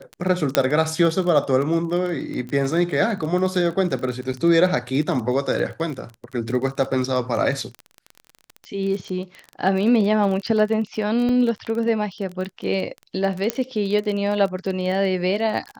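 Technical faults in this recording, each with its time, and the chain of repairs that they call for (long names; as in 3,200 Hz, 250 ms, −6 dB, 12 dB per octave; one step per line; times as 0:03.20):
surface crackle 21 per second −27 dBFS
0:00.55: click −1 dBFS
0:04.33–0:04.34: drop-out 6.5 ms
0:11.29: drop-out 2.2 ms
0:13.50: click −5 dBFS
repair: click removal
repair the gap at 0:04.33, 6.5 ms
repair the gap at 0:11.29, 2.2 ms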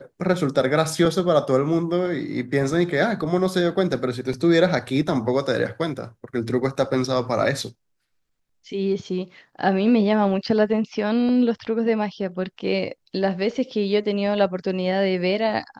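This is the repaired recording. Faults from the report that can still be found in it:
none of them is left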